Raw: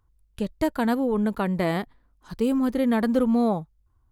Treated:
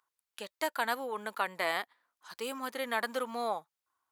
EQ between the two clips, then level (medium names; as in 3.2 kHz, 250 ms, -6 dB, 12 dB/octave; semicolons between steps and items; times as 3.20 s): high-pass 990 Hz 12 dB/octave; +1.0 dB